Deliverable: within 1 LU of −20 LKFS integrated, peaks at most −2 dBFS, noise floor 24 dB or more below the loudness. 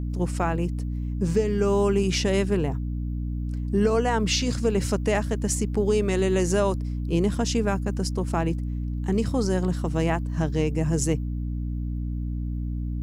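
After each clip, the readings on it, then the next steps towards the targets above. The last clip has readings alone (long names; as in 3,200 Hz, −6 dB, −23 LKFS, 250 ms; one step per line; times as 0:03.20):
mains hum 60 Hz; hum harmonics up to 300 Hz; level of the hum −26 dBFS; integrated loudness −25.5 LKFS; sample peak −11.0 dBFS; target loudness −20.0 LKFS
→ hum removal 60 Hz, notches 5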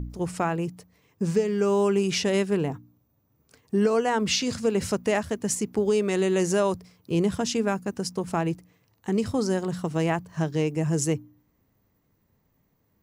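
mains hum none found; integrated loudness −26.0 LKFS; sample peak −12.5 dBFS; target loudness −20.0 LKFS
→ level +6 dB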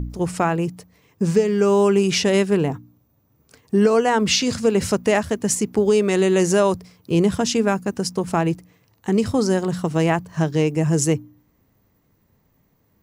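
integrated loudness −20.0 LKFS; sample peak −6.5 dBFS; background noise floor −64 dBFS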